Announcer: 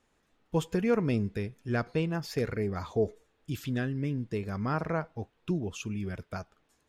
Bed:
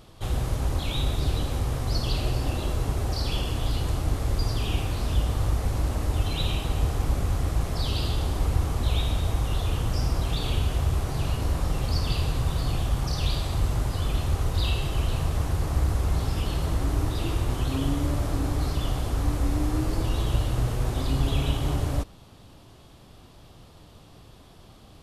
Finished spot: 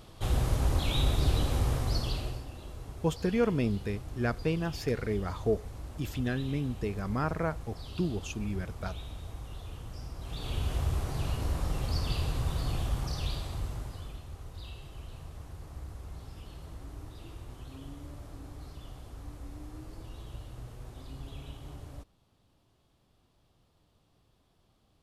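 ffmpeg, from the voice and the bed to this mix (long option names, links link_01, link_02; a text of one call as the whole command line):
ffmpeg -i stem1.wav -i stem2.wav -filter_complex "[0:a]adelay=2500,volume=-0.5dB[link_01];[1:a]volume=10dB,afade=type=out:start_time=1.69:duration=0.77:silence=0.16788,afade=type=in:start_time=10.18:duration=0.56:silence=0.281838,afade=type=out:start_time=12.86:duration=1.36:silence=0.211349[link_02];[link_01][link_02]amix=inputs=2:normalize=0" out.wav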